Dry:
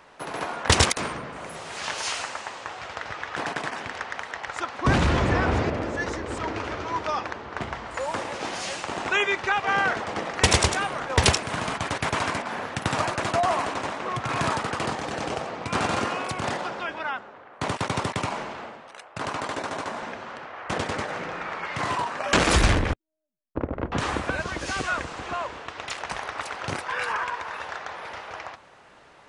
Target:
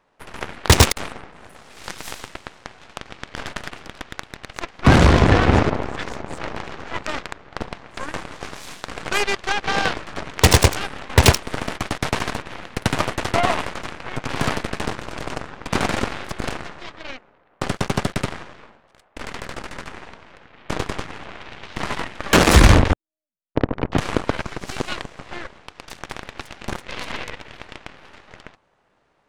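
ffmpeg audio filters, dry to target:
ffmpeg -i in.wav -af "tiltshelf=frequency=660:gain=3.5,asoftclip=type=tanh:threshold=-8.5dB,aeval=exprs='0.335*(cos(1*acos(clip(val(0)/0.335,-1,1)))-cos(1*PI/2))+0.0596*(cos(6*acos(clip(val(0)/0.335,-1,1)))-cos(6*PI/2))+0.0531*(cos(7*acos(clip(val(0)/0.335,-1,1)))-cos(7*PI/2))+0.0668*(cos(8*acos(clip(val(0)/0.335,-1,1)))-cos(8*PI/2))':channel_layout=same,volume=7dB" out.wav

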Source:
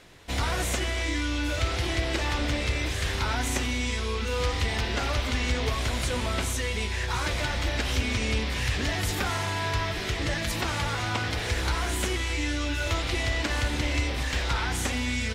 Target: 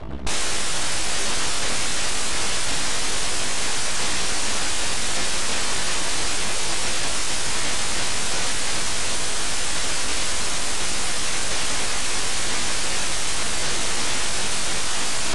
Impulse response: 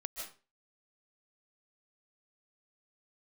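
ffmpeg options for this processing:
-af "aemphasis=mode=reproduction:type=75kf,anlmdn=0.01,equalizer=frequency=65:width=0.79:gain=5.5,acompressor=threshold=-25dB:ratio=3,aeval=exprs='0.119*sin(PI/2*8.91*val(0)/0.119)':channel_layout=same,asetrate=72056,aresample=44100,atempo=0.612027,aeval=exprs='abs(val(0))':channel_layout=same,volume=4.5dB" -ar 22050 -c:a adpcm_ima_wav

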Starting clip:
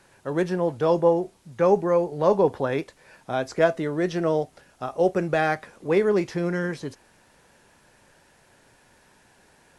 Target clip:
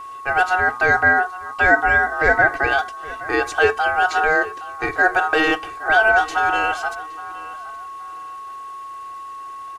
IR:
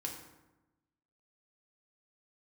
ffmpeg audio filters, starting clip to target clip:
-filter_complex "[0:a]aeval=exprs='val(0)*sin(2*PI*1100*n/s)':channel_layout=same,aecho=1:1:2.6:0.75,asplit=2[link_01][link_02];[link_02]alimiter=limit=-17.5dB:level=0:latency=1,volume=2.5dB[link_03];[link_01][link_03]amix=inputs=2:normalize=0,bandreject=frequency=60.64:width_type=h:width=4,bandreject=frequency=121.28:width_type=h:width=4,bandreject=frequency=181.92:width_type=h:width=4,bandreject=frequency=242.56:width_type=h:width=4,bandreject=frequency=303.2:width_type=h:width=4,bandreject=frequency=363.84:width_type=h:width=4,aeval=exprs='val(0)+0.0224*sin(2*PI*1100*n/s)':channel_layout=same,asplit=2[link_04][link_05];[link_05]adelay=819,lowpass=frequency=4700:poles=1,volume=-18dB,asplit=2[link_06][link_07];[link_07]adelay=819,lowpass=frequency=4700:poles=1,volume=0.26[link_08];[link_06][link_08]amix=inputs=2:normalize=0[link_09];[link_04][link_09]amix=inputs=2:normalize=0,volume=1dB"

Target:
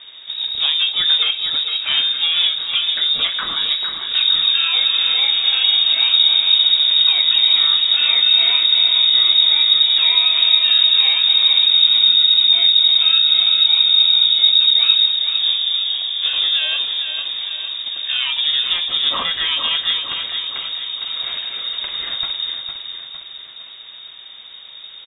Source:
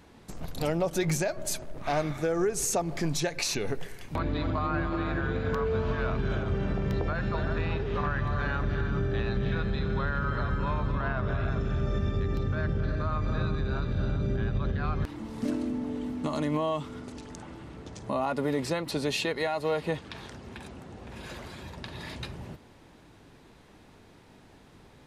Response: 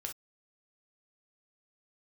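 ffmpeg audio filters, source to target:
-filter_complex "[0:a]equalizer=frequency=84:width_type=o:width=2:gain=11.5,asplit=2[link_01][link_02];[link_02]acompressor=threshold=-33dB:ratio=6,volume=-1dB[link_03];[link_01][link_03]amix=inputs=2:normalize=0,asplit=2[link_04][link_05];[link_05]asetrate=88200,aresample=44100,atempo=0.5,volume=-9dB[link_06];[link_04][link_06]amix=inputs=2:normalize=0,crystalizer=i=2:c=0,aecho=1:1:457|914|1371|1828|2285|2742:0.447|0.232|0.121|0.0628|0.0327|0.017,asplit=2[link_07][link_08];[1:a]atrim=start_sample=2205[link_09];[link_08][link_09]afir=irnorm=-1:irlink=0,volume=0dB[link_10];[link_07][link_10]amix=inputs=2:normalize=0,lowpass=frequency=3200:width_type=q:width=0.5098,lowpass=frequency=3200:width_type=q:width=0.6013,lowpass=frequency=3200:width_type=q:width=0.9,lowpass=frequency=3200:width_type=q:width=2.563,afreqshift=-3800,volume=-1dB"

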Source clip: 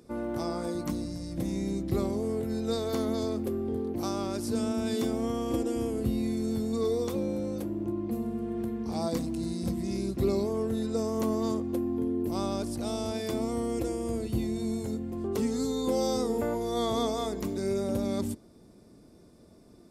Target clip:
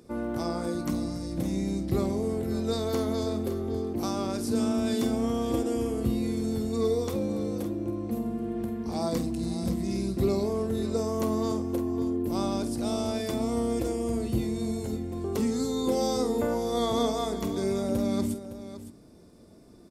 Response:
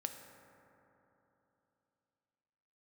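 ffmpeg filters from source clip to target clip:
-af "aecho=1:1:47|561:0.266|0.237,volume=1.5dB"

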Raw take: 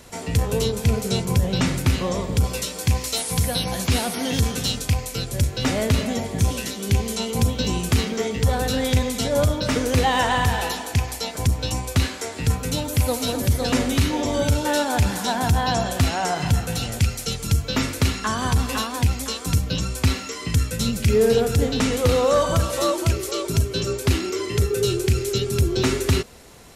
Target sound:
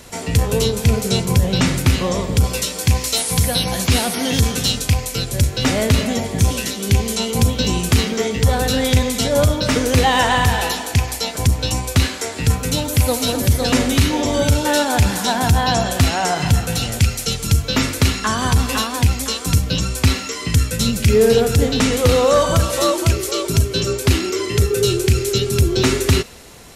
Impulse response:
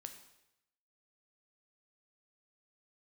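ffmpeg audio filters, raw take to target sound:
-filter_complex "[0:a]asplit=2[link_01][link_02];[link_02]highpass=1300[link_03];[1:a]atrim=start_sample=2205,asetrate=29106,aresample=44100[link_04];[link_03][link_04]afir=irnorm=-1:irlink=0,volume=-10dB[link_05];[link_01][link_05]amix=inputs=2:normalize=0,volume=4.5dB"

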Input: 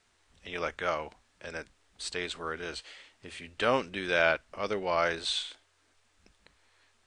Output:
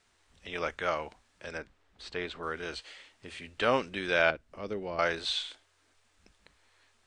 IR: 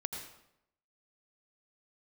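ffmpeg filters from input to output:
-filter_complex "[0:a]acrossover=split=6800[link_01][link_02];[link_02]acompressor=threshold=-59dB:ratio=4:attack=1:release=60[link_03];[link_01][link_03]amix=inputs=2:normalize=0,asettb=1/sr,asplit=3[link_04][link_05][link_06];[link_04]atrim=end=1.584[link_07];[link_05]atrim=start=1.58:end=2.43,asetpts=PTS-STARTPTS,afade=type=in:duration=0.004:curve=qsin,afade=type=out:start_time=0.846:duration=0.004:curve=qsin,aemphasis=mode=reproduction:type=75fm[link_08];[link_06]atrim=start=2.426[link_09];[link_07][link_08]acrossfade=duration=0.004:curve1=hsin:curve2=qsin[link_10];[link_10][link_09]acrossfade=duration=0.004:curve1=qsin:curve2=hsin,asettb=1/sr,asplit=3[link_11][link_12][link_13];[link_11]atrim=end=4.304[link_14];[link_12]atrim=start=4.3:end=4.99,asetpts=PTS-STARTPTS,afade=type=in:duration=0.004:curve=qsin,afade=type=out:start_time=0.686:duration=0.004:curve=qsin,acrossover=split=450[link_15][link_16];[link_16]acompressor=threshold=-48dB:ratio=2.5[link_17];[link_15][link_17]amix=inputs=2:normalize=0[link_18];[link_13]atrim=start=4.986[link_19];[link_14][link_18]acrossfade=duration=0.004:curve1=hsin:curve2=qsin[link_20];[link_20][link_19]acrossfade=duration=0.004:curve1=qsin:curve2=hsin"

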